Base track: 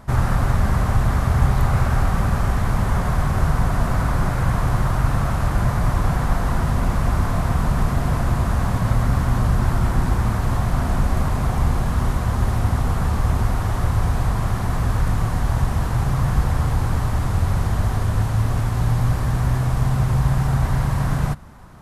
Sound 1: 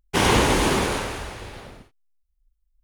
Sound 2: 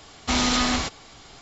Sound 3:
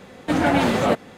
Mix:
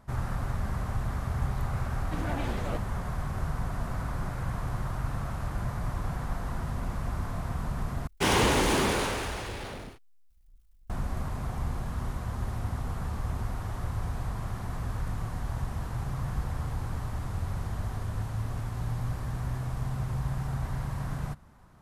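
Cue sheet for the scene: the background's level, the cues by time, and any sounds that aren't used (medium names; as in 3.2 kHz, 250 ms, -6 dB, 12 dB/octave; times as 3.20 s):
base track -13 dB
1.83 s: add 3 -17 dB + vibrato 11 Hz 80 cents
8.07 s: replace with 1 -8.5 dB + power-law waveshaper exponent 0.7
not used: 2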